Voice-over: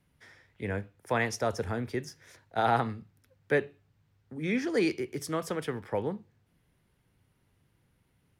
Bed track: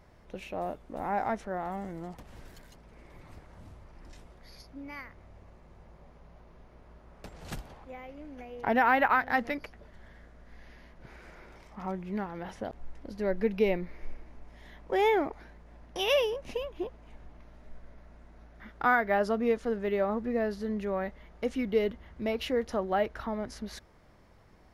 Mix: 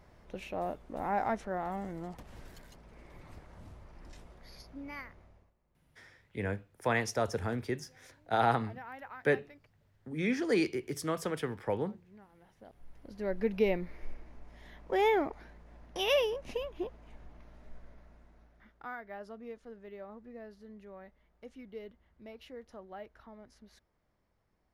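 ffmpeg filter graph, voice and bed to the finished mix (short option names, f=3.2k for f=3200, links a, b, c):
-filter_complex "[0:a]adelay=5750,volume=-1.5dB[a];[1:a]volume=19.5dB,afade=t=out:st=5.01:d=0.52:silence=0.0841395,afade=t=in:st=12.56:d=1.01:silence=0.0944061,afade=t=out:st=17.76:d=1.08:silence=0.158489[b];[a][b]amix=inputs=2:normalize=0"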